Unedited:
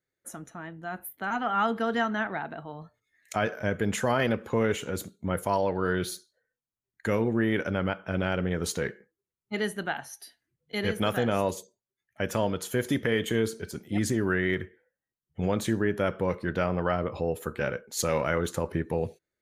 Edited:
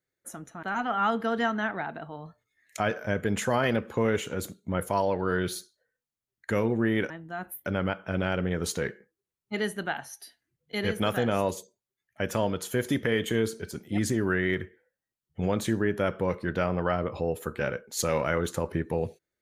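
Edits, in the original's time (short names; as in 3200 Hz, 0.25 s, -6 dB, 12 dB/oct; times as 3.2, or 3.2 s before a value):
0.63–1.19 move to 7.66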